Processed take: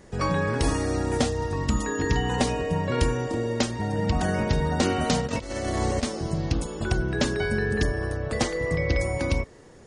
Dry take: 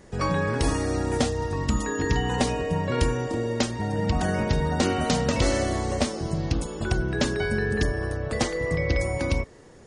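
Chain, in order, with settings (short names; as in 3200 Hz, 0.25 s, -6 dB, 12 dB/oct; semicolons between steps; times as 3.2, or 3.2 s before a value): 5.2–6.03 negative-ratio compressor -27 dBFS, ratio -0.5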